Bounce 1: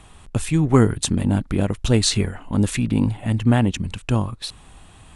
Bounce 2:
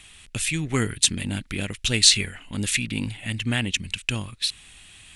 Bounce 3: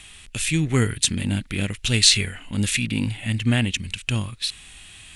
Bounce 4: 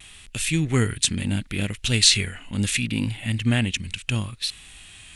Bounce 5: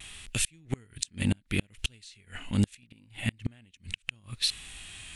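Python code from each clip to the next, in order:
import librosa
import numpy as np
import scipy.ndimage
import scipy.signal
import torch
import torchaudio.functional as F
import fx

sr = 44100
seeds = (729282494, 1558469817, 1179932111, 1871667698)

y1 = fx.high_shelf_res(x, sr, hz=1500.0, db=14.0, q=1.5)
y1 = y1 * librosa.db_to_amplitude(-9.5)
y2 = fx.hpss(y1, sr, part='harmonic', gain_db=8)
y2 = y2 * librosa.db_to_amplitude(-1.5)
y3 = fx.vibrato(y2, sr, rate_hz=0.73, depth_cents=24.0)
y3 = y3 * librosa.db_to_amplitude(-1.0)
y4 = fx.gate_flip(y3, sr, shuts_db=-14.0, range_db=-34)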